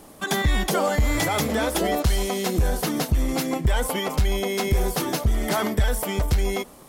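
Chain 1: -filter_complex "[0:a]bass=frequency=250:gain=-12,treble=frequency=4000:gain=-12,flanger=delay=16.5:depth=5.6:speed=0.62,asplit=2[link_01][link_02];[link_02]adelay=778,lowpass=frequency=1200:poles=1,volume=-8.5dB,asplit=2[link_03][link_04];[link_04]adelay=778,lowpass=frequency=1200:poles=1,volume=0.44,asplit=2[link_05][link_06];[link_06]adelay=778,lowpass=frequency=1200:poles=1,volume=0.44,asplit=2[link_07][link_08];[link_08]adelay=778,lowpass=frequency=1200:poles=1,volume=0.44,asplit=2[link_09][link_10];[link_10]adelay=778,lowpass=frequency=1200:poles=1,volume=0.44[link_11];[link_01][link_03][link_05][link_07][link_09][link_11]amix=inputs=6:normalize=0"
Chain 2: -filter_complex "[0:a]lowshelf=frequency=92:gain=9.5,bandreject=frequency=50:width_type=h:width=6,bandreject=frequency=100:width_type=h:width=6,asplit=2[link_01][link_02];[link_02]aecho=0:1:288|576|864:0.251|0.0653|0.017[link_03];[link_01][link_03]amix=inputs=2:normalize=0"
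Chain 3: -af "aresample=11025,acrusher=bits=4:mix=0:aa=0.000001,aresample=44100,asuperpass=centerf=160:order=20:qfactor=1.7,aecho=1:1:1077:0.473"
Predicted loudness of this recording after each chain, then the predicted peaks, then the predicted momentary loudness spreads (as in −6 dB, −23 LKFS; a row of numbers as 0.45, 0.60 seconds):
−30.5, −21.0, −34.5 LKFS; −15.5, −6.0, −18.0 dBFS; 5, 3, 3 LU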